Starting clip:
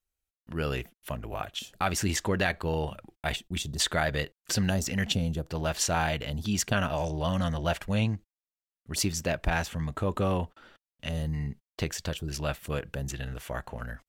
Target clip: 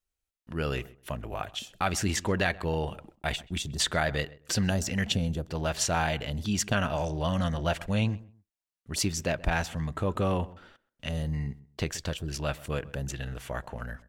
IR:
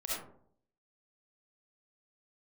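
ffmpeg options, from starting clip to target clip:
-filter_complex "[0:a]equalizer=f=14000:w=1.6:g=-6,asplit=2[s0][s1];[s1]adelay=130,lowpass=f=1500:p=1,volume=0.112,asplit=2[s2][s3];[s3]adelay=130,lowpass=f=1500:p=1,volume=0.23[s4];[s2][s4]amix=inputs=2:normalize=0[s5];[s0][s5]amix=inputs=2:normalize=0"

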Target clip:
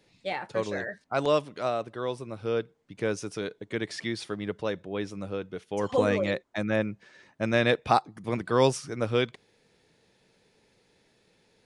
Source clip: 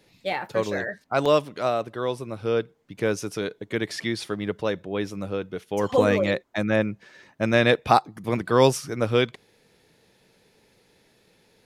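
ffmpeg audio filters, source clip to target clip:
-af "aresample=22050,aresample=44100,volume=0.596"

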